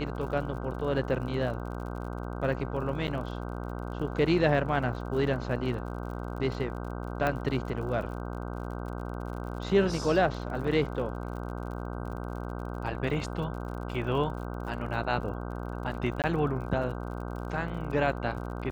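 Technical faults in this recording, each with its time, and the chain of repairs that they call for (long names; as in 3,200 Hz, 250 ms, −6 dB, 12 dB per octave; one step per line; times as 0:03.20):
mains buzz 60 Hz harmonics 26 −36 dBFS
surface crackle 48 per second −40 dBFS
0:03.07–0:03.08: drop-out 8.6 ms
0:07.27: click −16 dBFS
0:16.22–0:16.24: drop-out 18 ms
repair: click removal
hum removal 60 Hz, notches 26
repair the gap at 0:03.07, 8.6 ms
repair the gap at 0:16.22, 18 ms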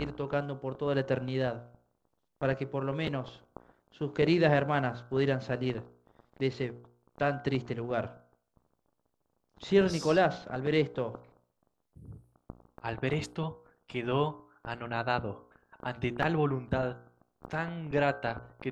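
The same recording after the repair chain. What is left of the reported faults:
0:07.27: click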